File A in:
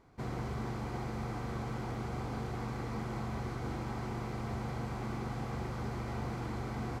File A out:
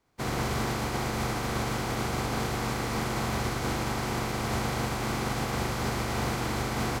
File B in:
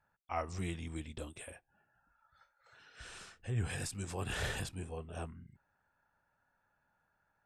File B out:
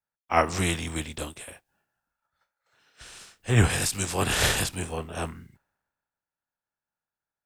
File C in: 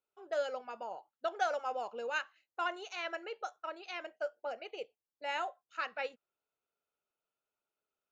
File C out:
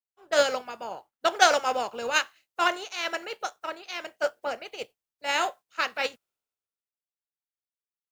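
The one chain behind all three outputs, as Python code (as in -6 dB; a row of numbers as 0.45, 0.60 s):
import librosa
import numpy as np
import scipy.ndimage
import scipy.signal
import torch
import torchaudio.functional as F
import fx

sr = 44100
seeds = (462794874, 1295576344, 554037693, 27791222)

y = fx.spec_flatten(x, sr, power=0.66)
y = fx.band_widen(y, sr, depth_pct=70)
y = y * 10.0 ** (-30 / 20.0) / np.sqrt(np.mean(np.square(y)))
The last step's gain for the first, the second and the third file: +8.0, +11.0, +9.5 dB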